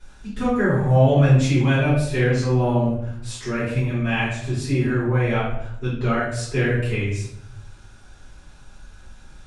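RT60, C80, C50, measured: 0.75 s, 5.5 dB, 2.0 dB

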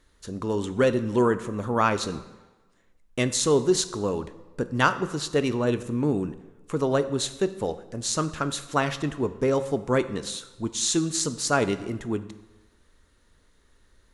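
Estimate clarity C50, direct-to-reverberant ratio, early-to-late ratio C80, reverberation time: 14.0 dB, 11.0 dB, 16.0 dB, 1.2 s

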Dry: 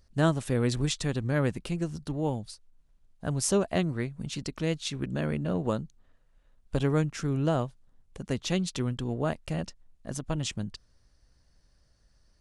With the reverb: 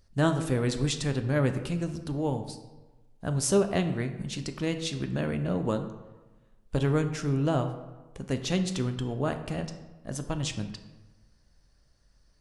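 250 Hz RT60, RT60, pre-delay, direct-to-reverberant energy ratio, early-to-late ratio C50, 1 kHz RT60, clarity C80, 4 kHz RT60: 1.2 s, 1.2 s, 7 ms, 7.0 dB, 10.0 dB, 1.2 s, 12.0 dB, 0.75 s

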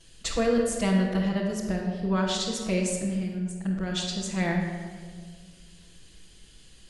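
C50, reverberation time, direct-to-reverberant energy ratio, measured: 2.0 dB, 1.8 s, -9.5 dB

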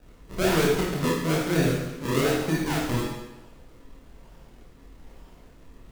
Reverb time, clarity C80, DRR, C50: 1.0 s, 4.5 dB, -5.0 dB, 0.5 dB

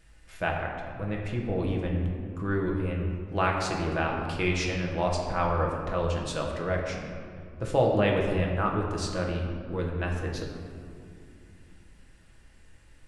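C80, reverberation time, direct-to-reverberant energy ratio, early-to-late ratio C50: 4.0 dB, 2.4 s, -1.0 dB, 3.0 dB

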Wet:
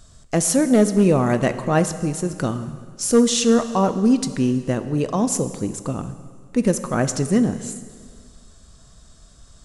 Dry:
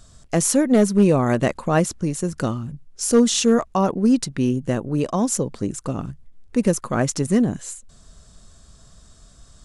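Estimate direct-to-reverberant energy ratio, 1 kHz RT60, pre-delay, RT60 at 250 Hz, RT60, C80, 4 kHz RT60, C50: 10.5 dB, 1.9 s, 4 ms, 1.9 s, 1.9 s, 13.0 dB, 1.8 s, 12.0 dB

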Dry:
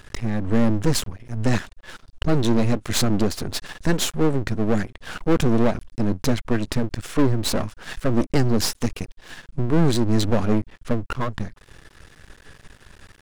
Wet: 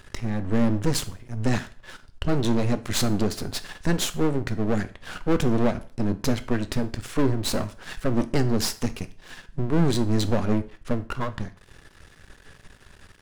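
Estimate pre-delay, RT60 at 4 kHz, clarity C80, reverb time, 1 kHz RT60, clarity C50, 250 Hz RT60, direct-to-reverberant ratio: 5 ms, 0.45 s, 21.5 dB, 0.45 s, 0.45 s, 16.5 dB, 0.45 s, 11.0 dB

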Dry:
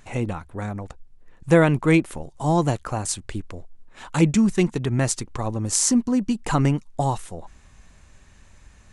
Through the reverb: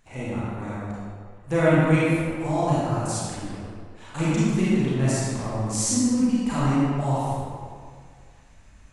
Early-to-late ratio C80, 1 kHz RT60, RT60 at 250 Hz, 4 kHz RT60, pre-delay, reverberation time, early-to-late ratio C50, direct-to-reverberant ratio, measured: -2.5 dB, 1.9 s, 2.0 s, 1.3 s, 29 ms, 2.0 s, -5.0 dB, -9.5 dB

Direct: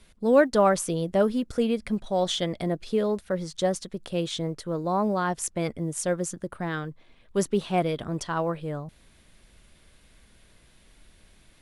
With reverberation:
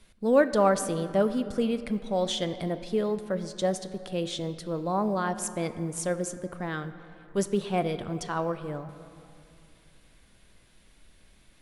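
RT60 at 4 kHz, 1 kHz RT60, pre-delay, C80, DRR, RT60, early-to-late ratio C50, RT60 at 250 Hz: 1.7 s, 2.6 s, 4 ms, 13.0 dB, 10.5 dB, 2.6 s, 12.0 dB, 3.2 s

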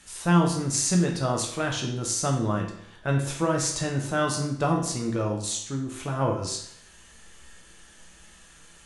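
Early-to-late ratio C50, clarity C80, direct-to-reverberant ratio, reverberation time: 5.5 dB, 9.0 dB, 0.0 dB, 0.70 s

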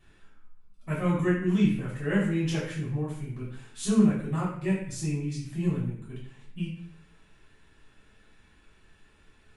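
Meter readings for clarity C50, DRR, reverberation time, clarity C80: 3.5 dB, -8.5 dB, 0.55 s, 7.0 dB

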